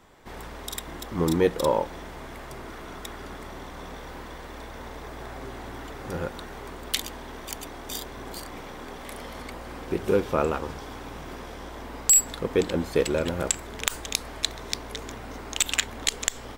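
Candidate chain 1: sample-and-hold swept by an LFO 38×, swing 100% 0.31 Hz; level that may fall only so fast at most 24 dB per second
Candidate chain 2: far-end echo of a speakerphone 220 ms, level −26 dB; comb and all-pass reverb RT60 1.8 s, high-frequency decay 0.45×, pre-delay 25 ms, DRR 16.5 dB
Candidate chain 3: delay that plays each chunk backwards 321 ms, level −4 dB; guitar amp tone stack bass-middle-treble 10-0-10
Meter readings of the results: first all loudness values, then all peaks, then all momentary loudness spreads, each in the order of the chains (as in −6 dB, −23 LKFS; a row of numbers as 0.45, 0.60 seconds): −25.0, −27.5, −28.5 LKFS; −5.5, −2.0, −3.0 dBFS; 19, 16, 20 LU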